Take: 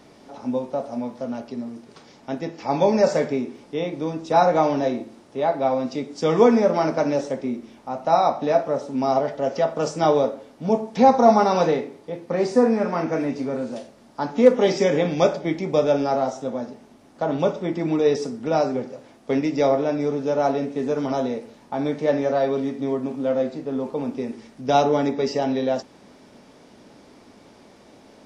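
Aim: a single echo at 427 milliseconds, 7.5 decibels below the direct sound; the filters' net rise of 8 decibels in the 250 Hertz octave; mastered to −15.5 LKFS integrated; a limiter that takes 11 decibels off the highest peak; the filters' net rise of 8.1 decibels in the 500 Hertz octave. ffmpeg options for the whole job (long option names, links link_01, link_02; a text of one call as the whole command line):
ffmpeg -i in.wav -af "equalizer=frequency=250:width_type=o:gain=7,equalizer=frequency=500:width_type=o:gain=8,alimiter=limit=-4.5dB:level=0:latency=1,aecho=1:1:427:0.422,volume=0.5dB" out.wav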